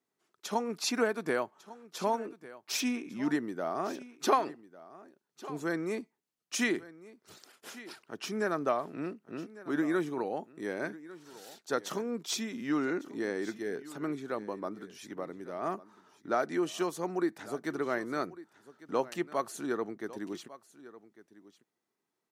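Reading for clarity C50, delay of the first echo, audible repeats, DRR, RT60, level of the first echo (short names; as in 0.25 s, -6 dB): none, 1.15 s, 1, none, none, -18.0 dB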